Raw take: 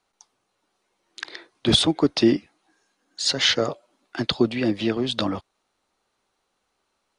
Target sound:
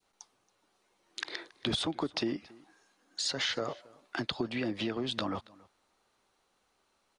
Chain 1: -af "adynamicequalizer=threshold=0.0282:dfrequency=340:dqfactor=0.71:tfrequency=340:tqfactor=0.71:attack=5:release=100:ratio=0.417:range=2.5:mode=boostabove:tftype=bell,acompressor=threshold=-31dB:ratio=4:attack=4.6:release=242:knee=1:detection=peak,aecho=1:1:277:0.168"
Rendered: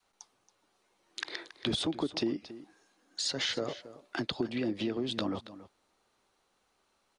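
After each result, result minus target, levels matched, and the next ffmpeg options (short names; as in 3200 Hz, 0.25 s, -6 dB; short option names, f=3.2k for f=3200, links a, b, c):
echo-to-direct +8 dB; 1000 Hz band -3.0 dB
-af "adynamicequalizer=threshold=0.0282:dfrequency=340:dqfactor=0.71:tfrequency=340:tqfactor=0.71:attack=5:release=100:ratio=0.417:range=2.5:mode=boostabove:tftype=bell,acompressor=threshold=-31dB:ratio=4:attack=4.6:release=242:knee=1:detection=peak,aecho=1:1:277:0.0668"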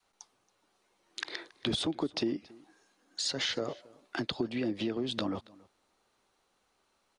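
1000 Hz band -3.0 dB
-af "adynamicequalizer=threshold=0.0282:dfrequency=1200:dqfactor=0.71:tfrequency=1200:tqfactor=0.71:attack=5:release=100:ratio=0.417:range=2.5:mode=boostabove:tftype=bell,acompressor=threshold=-31dB:ratio=4:attack=4.6:release=242:knee=1:detection=peak,aecho=1:1:277:0.0668"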